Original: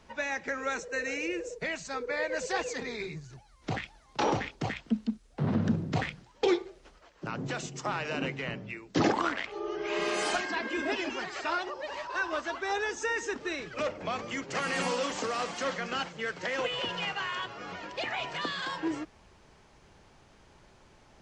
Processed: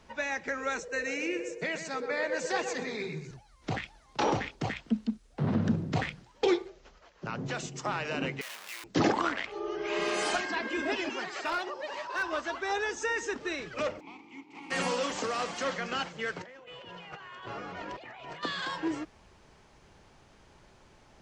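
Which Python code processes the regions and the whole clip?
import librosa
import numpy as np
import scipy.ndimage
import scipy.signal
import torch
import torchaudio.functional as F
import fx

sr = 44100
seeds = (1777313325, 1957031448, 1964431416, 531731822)

y = fx.chain(x, sr, fx.low_shelf_res(hz=110.0, db=-10.0, q=1.5),
    fx.echo_filtered(ms=125, feedback_pct=37, hz=2600.0, wet_db=-8), at=(1.07, 3.31))
y = fx.chain(y, sr, fx.resample_bad(factor=3, down='none', up='filtered'),
    fx.notch(hz=310.0, q=6.8), at=(6.68, 7.53))
y = fx.chain(y, sr, fx.clip_1bit(),
    fx.highpass(hz=1100.0, slope=12), at=(8.41, 8.84))
y = fx.chain(y, sr, fx.highpass(hz=150.0, slope=12),
    fx.clip_hard(threshold_db=-25.5), at=(11.09, 12.23))
y = fx.spec_flatten(y, sr, power=0.56, at=(13.99, 14.7), fade=0.02)
y = fx.vowel_filter(y, sr, vowel='u', at=(13.99, 14.7), fade=0.02)
y = fx.chain(y, sr, fx.high_shelf(hz=2300.0, db=-8.5),
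    fx.over_compress(threshold_db=-45.0, ratio=-1.0), at=(16.36, 18.43))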